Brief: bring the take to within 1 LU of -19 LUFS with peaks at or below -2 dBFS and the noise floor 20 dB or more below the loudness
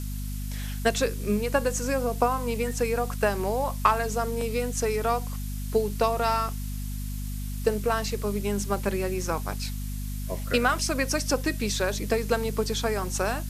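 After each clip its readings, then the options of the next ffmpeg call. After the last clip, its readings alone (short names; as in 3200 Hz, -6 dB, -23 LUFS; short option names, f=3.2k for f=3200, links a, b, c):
hum 50 Hz; harmonics up to 250 Hz; hum level -30 dBFS; noise floor -32 dBFS; noise floor target -48 dBFS; loudness -27.5 LUFS; peak -6.0 dBFS; loudness target -19.0 LUFS
-> -af "bandreject=f=50:t=h:w=4,bandreject=f=100:t=h:w=4,bandreject=f=150:t=h:w=4,bandreject=f=200:t=h:w=4,bandreject=f=250:t=h:w=4"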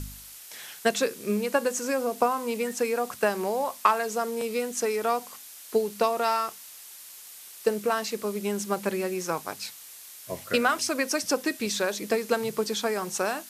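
hum none; noise floor -46 dBFS; noise floor target -48 dBFS
-> -af "afftdn=nr=6:nf=-46"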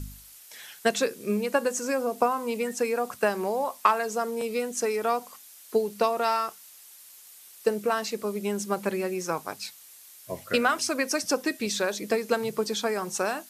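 noise floor -50 dBFS; loudness -27.5 LUFS; peak -6.5 dBFS; loudness target -19.0 LUFS
-> -af "volume=8.5dB,alimiter=limit=-2dB:level=0:latency=1"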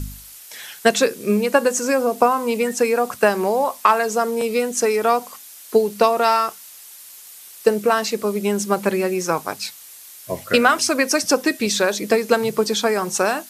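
loudness -19.5 LUFS; peak -2.0 dBFS; noise floor -42 dBFS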